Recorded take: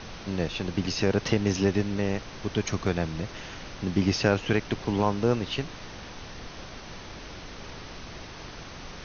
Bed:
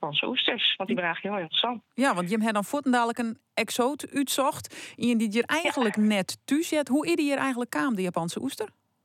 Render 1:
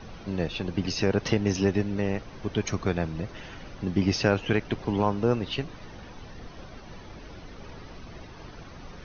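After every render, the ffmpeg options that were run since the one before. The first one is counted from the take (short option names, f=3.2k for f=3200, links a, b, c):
-af "afftdn=nr=10:nf=-42"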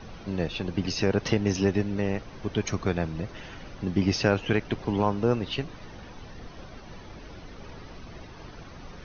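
-af anull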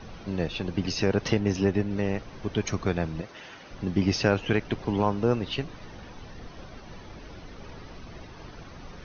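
-filter_complex "[0:a]asettb=1/sr,asplit=3[a][b][c];[a]atrim=end=1.394[d];[b]atrim=start=1.39:end=1.91,asetpts=PTS-STARTPTS,afade=t=in:d=0.004:c=qsin,afade=t=out:st=0.516:d=0.004:c=qsin,highshelf=f=4.4k:g=-8[e];[c]atrim=start=1.906[f];[d][e]acrossfade=d=0.004:c1=hsin:c2=qsin[g];[g][f]acrossfade=d=0.004:c1=qsin:c2=hsin,asettb=1/sr,asplit=3[h][i][j];[h]atrim=end=3.214[k];[i]atrim=start=3.21:end=3.71,asetpts=PTS-STARTPTS,afade=t=in:d=0.004:c=qsin,afade=t=out:st=0.496:d=0.004:c=qsin,highpass=f=450:p=1[l];[j]atrim=start=3.706[m];[k][l]acrossfade=d=0.004:c1=hsin:c2=qsin[n];[n][m]acrossfade=d=0.004:c1=qsin:c2=hsin"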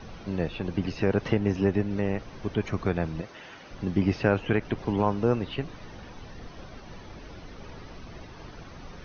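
-filter_complex "[0:a]acrossover=split=2800[a][b];[b]acompressor=threshold=-52dB:ratio=4:attack=1:release=60[c];[a][c]amix=inputs=2:normalize=0"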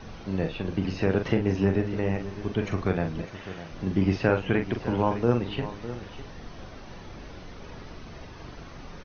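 -filter_complex "[0:a]asplit=2[a][b];[b]adelay=42,volume=-7dB[c];[a][c]amix=inputs=2:normalize=0,aecho=1:1:605:0.211"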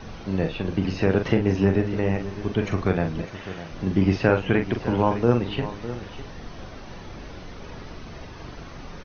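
-af "volume=3.5dB"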